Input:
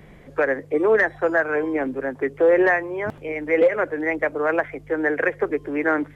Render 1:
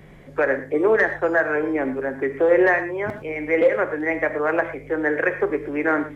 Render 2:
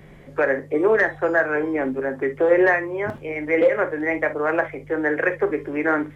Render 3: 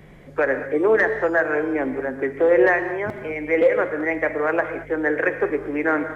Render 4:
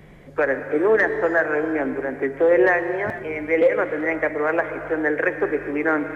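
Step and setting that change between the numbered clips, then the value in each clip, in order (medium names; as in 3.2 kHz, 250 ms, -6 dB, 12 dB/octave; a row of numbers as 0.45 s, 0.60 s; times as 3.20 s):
gated-style reverb, gate: 140 ms, 80 ms, 250 ms, 450 ms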